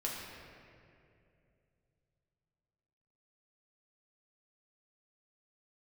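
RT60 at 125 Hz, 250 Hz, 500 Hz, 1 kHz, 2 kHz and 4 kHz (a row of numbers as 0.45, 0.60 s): 3.9, 3.0, 3.0, 2.2, 2.2, 1.5 s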